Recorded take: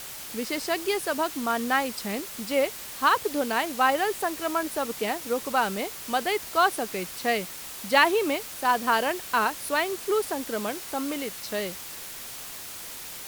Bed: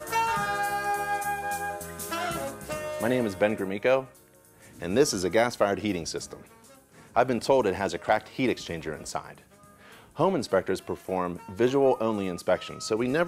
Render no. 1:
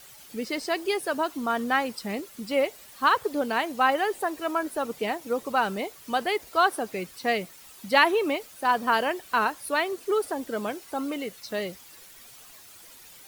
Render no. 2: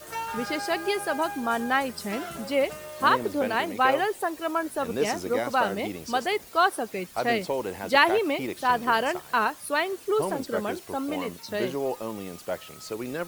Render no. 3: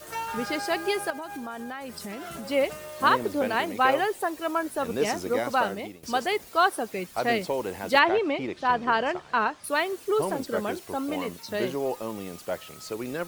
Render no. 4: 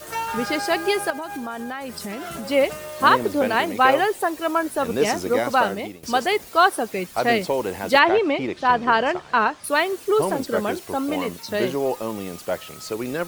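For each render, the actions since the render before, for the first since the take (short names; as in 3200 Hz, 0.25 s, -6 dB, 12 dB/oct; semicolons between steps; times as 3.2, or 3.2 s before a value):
denoiser 12 dB, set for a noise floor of -39 dBFS
add bed -7 dB
1.1–2.5 compressor, threshold -33 dBFS; 5.57–6.03 fade out, to -16 dB; 7.99–9.64 air absorption 120 m
gain +5.5 dB; limiter -3 dBFS, peak gain reduction 2.5 dB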